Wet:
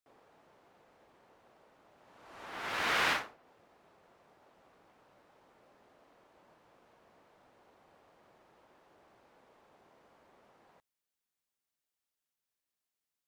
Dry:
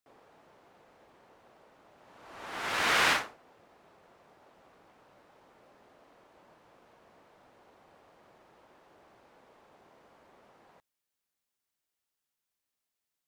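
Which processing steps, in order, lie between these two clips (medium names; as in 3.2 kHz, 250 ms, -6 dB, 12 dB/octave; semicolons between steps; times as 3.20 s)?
dynamic bell 8.4 kHz, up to -5 dB, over -57 dBFS, Q 0.8; trim -4 dB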